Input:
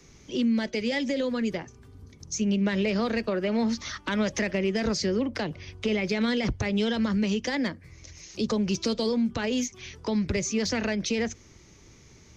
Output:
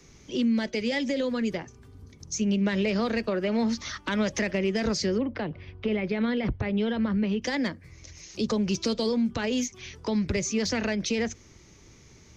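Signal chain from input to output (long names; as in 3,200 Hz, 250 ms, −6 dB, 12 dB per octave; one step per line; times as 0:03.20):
0:05.18–0:07.42: high-frequency loss of the air 330 metres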